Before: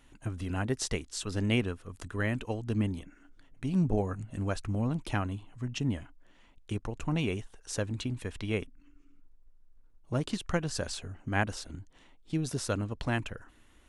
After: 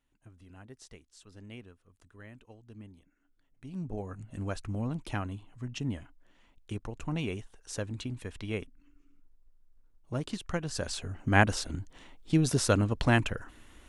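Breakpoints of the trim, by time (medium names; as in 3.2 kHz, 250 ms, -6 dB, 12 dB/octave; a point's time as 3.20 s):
2.97 s -19 dB
3.93 s -9.5 dB
4.34 s -3 dB
10.60 s -3 dB
11.31 s +6.5 dB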